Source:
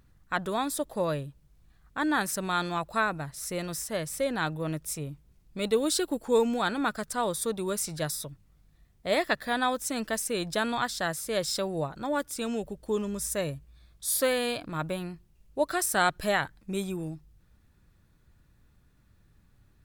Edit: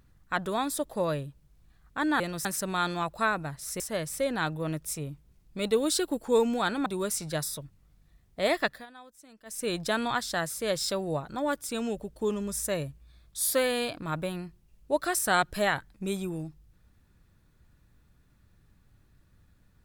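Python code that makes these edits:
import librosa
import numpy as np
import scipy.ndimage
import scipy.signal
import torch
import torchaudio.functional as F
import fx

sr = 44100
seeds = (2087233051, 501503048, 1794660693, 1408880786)

y = fx.edit(x, sr, fx.move(start_s=3.55, length_s=0.25, to_s=2.2),
    fx.cut(start_s=6.86, length_s=0.67),
    fx.fade_down_up(start_s=9.31, length_s=1.03, db=-22.5, fade_s=0.22), tone=tone)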